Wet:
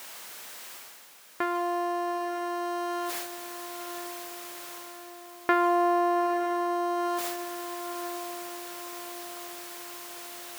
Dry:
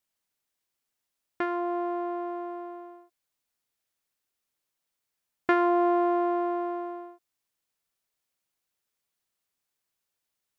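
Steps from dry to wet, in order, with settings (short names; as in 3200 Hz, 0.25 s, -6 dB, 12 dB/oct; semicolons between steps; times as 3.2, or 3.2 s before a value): zero-crossing step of -35 dBFS; HPF 970 Hz 6 dB/oct; gate with hold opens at -36 dBFS; high shelf 2000 Hz -9 dB; reverse; upward compressor, threshold -33 dBFS; reverse; diffused feedback echo 0.912 s, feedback 48%, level -10 dB; gain +6 dB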